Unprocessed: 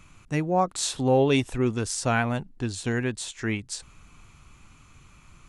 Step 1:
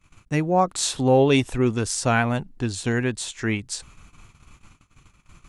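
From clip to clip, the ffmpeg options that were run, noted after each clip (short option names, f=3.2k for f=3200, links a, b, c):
-af "agate=range=-23dB:threshold=-50dB:ratio=16:detection=peak,volume=3.5dB"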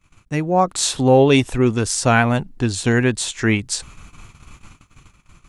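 -af "dynaudnorm=f=130:g=9:m=7.5dB"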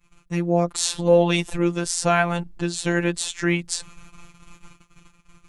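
-af "afftfilt=real='hypot(re,im)*cos(PI*b)':imag='0':win_size=1024:overlap=0.75"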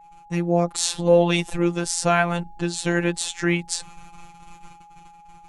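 -af "aeval=exprs='val(0)+0.00501*sin(2*PI*830*n/s)':c=same"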